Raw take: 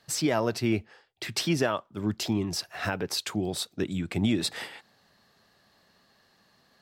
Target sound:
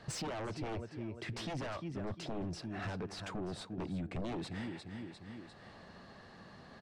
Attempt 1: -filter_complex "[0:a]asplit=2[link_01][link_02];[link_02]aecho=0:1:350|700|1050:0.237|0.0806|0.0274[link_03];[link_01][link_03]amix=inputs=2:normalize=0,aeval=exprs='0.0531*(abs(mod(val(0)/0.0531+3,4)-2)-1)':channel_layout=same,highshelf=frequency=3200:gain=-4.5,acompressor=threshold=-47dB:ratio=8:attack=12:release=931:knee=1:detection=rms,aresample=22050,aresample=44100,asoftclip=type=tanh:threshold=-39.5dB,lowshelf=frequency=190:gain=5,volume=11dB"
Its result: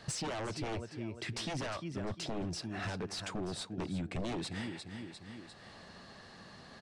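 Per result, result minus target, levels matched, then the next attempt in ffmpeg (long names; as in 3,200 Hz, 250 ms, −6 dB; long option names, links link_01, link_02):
soft clipping: distortion −11 dB; 8,000 Hz band +4.0 dB
-filter_complex "[0:a]asplit=2[link_01][link_02];[link_02]aecho=0:1:350|700|1050:0.237|0.0806|0.0274[link_03];[link_01][link_03]amix=inputs=2:normalize=0,aeval=exprs='0.0531*(abs(mod(val(0)/0.0531+3,4)-2)-1)':channel_layout=same,highshelf=frequency=3200:gain=-4.5,acompressor=threshold=-47dB:ratio=8:attack=12:release=931:knee=1:detection=rms,aresample=22050,aresample=44100,asoftclip=type=tanh:threshold=-46.5dB,lowshelf=frequency=190:gain=5,volume=11dB"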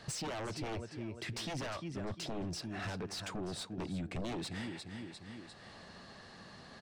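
8,000 Hz band +4.0 dB
-filter_complex "[0:a]asplit=2[link_01][link_02];[link_02]aecho=0:1:350|700|1050:0.237|0.0806|0.0274[link_03];[link_01][link_03]amix=inputs=2:normalize=0,aeval=exprs='0.0531*(abs(mod(val(0)/0.0531+3,4)-2)-1)':channel_layout=same,highshelf=frequency=3200:gain=-15,acompressor=threshold=-47dB:ratio=8:attack=12:release=931:knee=1:detection=rms,aresample=22050,aresample=44100,asoftclip=type=tanh:threshold=-46.5dB,lowshelf=frequency=190:gain=5,volume=11dB"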